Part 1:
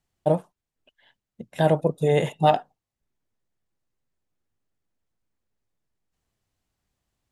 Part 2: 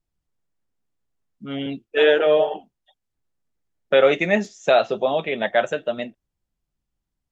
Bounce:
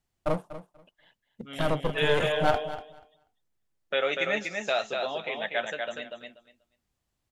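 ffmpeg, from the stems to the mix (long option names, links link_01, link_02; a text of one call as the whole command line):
ffmpeg -i stem1.wav -i stem2.wav -filter_complex "[0:a]aeval=exprs='clip(val(0),-1,0.0251)':channel_layout=same,volume=-2dB,asplit=2[link_01][link_02];[link_02]volume=-14dB[link_03];[1:a]tiltshelf=frequency=970:gain=-6,volume=-10dB,asplit=2[link_04][link_05];[link_05]volume=-4.5dB[link_06];[link_03][link_06]amix=inputs=2:normalize=0,aecho=0:1:242|484|726:1|0.16|0.0256[link_07];[link_01][link_04][link_07]amix=inputs=3:normalize=0" out.wav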